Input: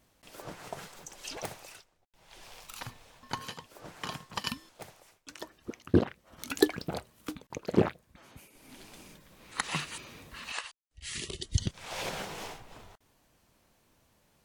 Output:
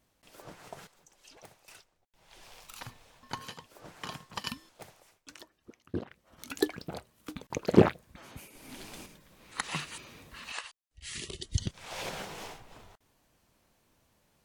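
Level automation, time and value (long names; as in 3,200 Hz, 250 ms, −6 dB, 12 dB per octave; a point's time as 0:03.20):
−5 dB
from 0:00.87 −14.5 dB
from 0:01.68 −2.5 dB
from 0:05.42 −12 dB
from 0:06.11 −4.5 dB
from 0:07.36 +5 dB
from 0:09.06 −2 dB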